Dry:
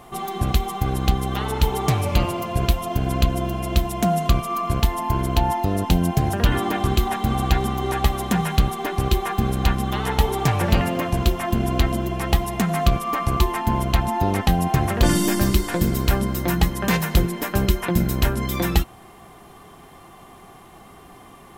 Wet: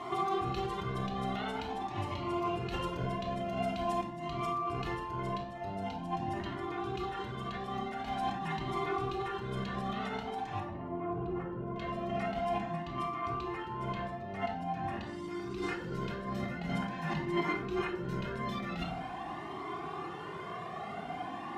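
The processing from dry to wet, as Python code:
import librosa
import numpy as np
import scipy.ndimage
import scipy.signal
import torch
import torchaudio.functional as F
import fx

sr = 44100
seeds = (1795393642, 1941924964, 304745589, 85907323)

y = scipy.signal.sosfilt(scipy.signal.butter(2, 200.0, 'highpass', fs=sr, output='sos'), x)
y = fx.over_compress(y, sr, threshold_db=-34.0, ratio=-1.0)
y = fx.lowpass(y, sr, hz=fx.steps((0.0, 4400.0), (10.6, 1000.0), (11.76, 3500.0)), slope=12)
y = fx.room_shoebox(y, sr, seeds[0], volume_m3=1900.0, walls='furnished', distance_m=3.3)
y = fx.comb_cascade(y, sr, direction='rising', hz=0.46)
y = F.gain(torch.from_numpy(y), -2.0).numpy()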